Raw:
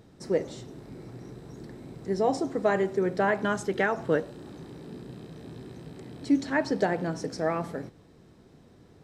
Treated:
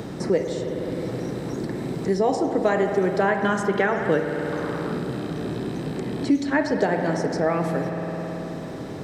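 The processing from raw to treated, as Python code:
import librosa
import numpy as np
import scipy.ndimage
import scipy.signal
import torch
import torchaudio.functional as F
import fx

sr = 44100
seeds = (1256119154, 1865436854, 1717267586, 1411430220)

y = fx.peak_eq(x, sr, hz=1200.0, db=13.5, octaves=0.94, at=(4.52, 4.98))
y = fx.rev_spring(y, sr, rt60_s=2.6, pass_ms=(53,), chirp_ms=75, drr_db=5.5)
y = fx.band_squash(y, sr, depth_pct=70)
y = y * 10.0 ** (4.5 / 20.0)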